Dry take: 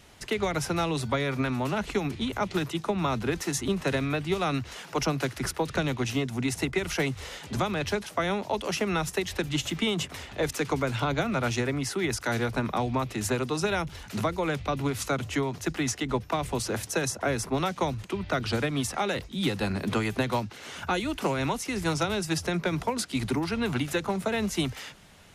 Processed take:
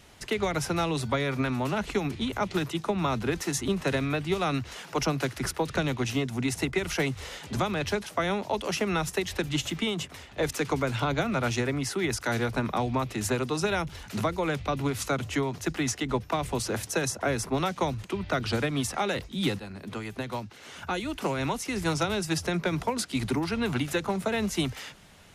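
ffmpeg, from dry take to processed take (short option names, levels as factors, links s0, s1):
-filter_complex "[0:a]asplit=3[s0][s1][s2];[s0]atrim=end=10.37,asetpts=PTS-STARTPTS,afade=t=out:st=9.58:d=0.79:silence=0.446684[s3];[s1]atrim=start=10.37:end=19.59,asetpts=PTS-STARTPTS,afade=t=in:d=0.004:c=hsin:silence=0.446684,afade=t=out:st=9.216:d=0.004:c=hsin:silence=0.223872[s4];[s2]atrim=start=19.59,asetpts=PTS-STARTPTS,afade=t=in:d=2.18:silence=0.223872[s5];[s3][s4][s5]concat=n=3:v=0:a=1"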